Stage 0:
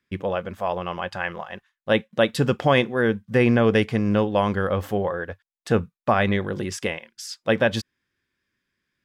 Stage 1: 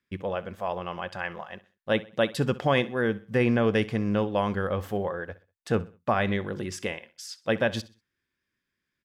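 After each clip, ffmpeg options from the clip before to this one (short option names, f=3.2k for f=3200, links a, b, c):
-af "aecho=1:1:64|128|192:0.112|0.0404|0.0145,volume=-5dB"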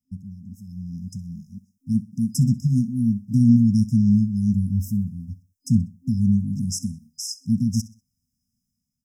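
-af "dynaudnorm=f=540:g=3:m=11.5dB,afftfilt=real='re*(1-between(b*sr/4096,260,5000))':imag='im*(1-between(b*sr/4096,260,5000))':win_size=4096:overlap=0.75,volume=1.5dB"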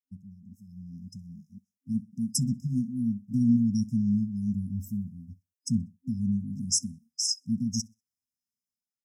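-af "afftdn=nr=18:nf=-33,bass=f=250:g=-12,treble=f=4k:g=6"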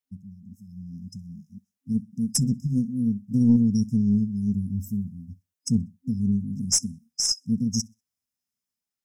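-af "aeval=exprs='0.282*(cos(1*acos(clip(val(0)/0.282,-1,1)))-cos(1*PI/2))+0.0112*(cos(4*acos(clip(val(0)/0.282,-1,1)))-cos(4*PI/2))':c=same,volume=4dB"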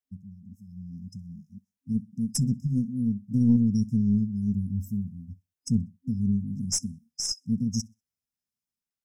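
-af "lowshelf=f=230:g=7,volume=-6dB"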